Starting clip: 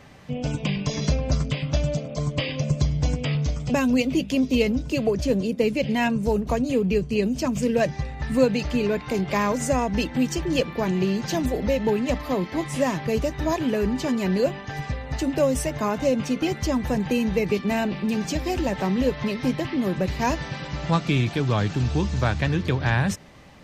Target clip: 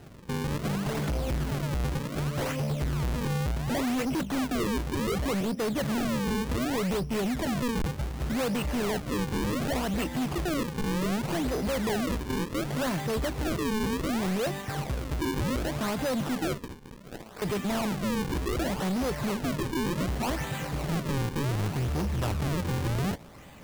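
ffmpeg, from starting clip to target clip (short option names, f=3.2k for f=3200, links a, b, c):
-filter_complex "[0:a]volume=26.5dB,asoftclip=hard,volume=-26.5dB,asettb=1/sr,asplit=3[a][b][c];[a]atrim=end=16.584[d];[b]atrim=start=16.58:end=17.42,asetpts=PTS-STARTPTS,afade=t=in:d=0.004:c=qsin,afade=t=out:st=0.836:d=0.004:c=qsin,bandpass=f=6.4k:t=q:w=0.51:csg=0[e];[c]atrim=start=17.416[f];[d][e]acrossfade=d=0.004:c1=hsin:c2=qsin[g];[g][f]acrossfade=d=0.004:c1=qsin:c2=hsin,acrusher=samples=38:mix=1:aa=0.000001:lfo=1:lforange=60.8:lforate=0.67"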